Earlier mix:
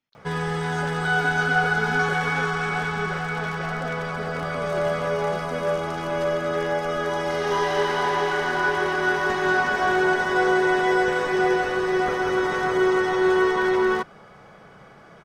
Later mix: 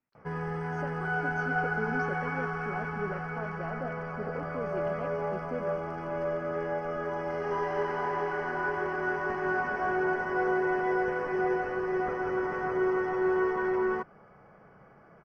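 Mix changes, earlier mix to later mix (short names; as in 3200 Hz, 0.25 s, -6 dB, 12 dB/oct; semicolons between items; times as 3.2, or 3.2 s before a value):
background -7.0 dB; master: add running mean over 12 samples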